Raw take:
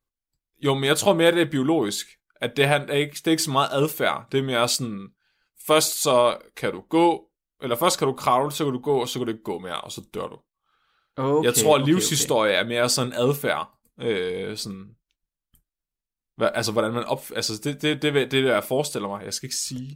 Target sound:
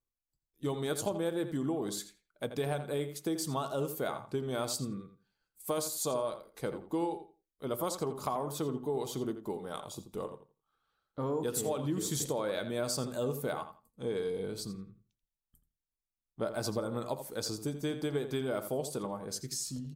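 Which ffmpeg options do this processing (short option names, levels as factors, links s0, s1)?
-filter_complex "[0:a]equalizer=f=2400:w=0.87:g=-11.5,acompressor=threshold=0.0708:ratio=6,asplit=2[s0][s1];[s1]adelay=84,lowpass=f=4100:p=1,volume=0.316,asplit=2[s2][s3];[s3]adelay=84,lowpass=f=4100:p=1,volume=0.2,asplit=2[s4][s5];[s5]adelay=84,lowpass=f=4100:p=1,volume=0.2[s6];[s2][s4][s6]amix=inputs=3:normalize=0[s7];[s0][s7]amix=inputs=2:normalize=0,volume=0.447"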